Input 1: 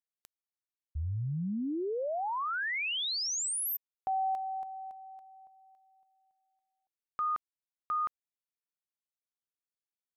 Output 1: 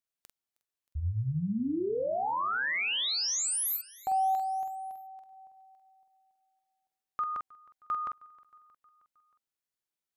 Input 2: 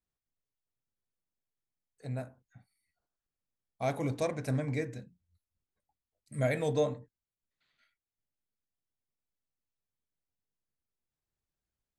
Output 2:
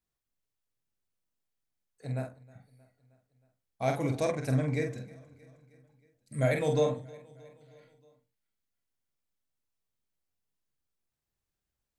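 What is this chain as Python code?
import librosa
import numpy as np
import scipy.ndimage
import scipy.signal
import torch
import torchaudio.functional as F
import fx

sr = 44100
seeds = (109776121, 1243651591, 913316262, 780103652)

p1 = fx.doubler(x, sr, ms=46.0, db=-5.5)
p2 = p1 + fx.echo_feedback(p1, sr, ms=314, feedback_pct=60, wet_db=-23.0, dry=0)
y = p2 * 10.0 ** (1.5 / 20.0)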